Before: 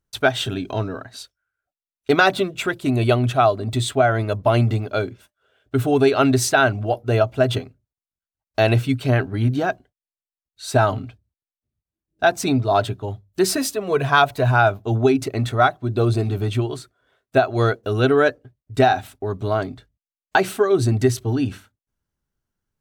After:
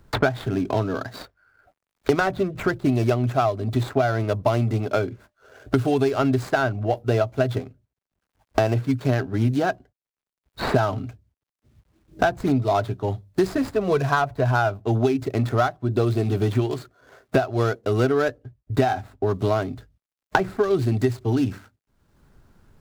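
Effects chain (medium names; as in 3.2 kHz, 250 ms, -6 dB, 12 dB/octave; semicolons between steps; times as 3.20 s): median filter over 15 samples; three bands compressed up and down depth 100%; trim -3 dB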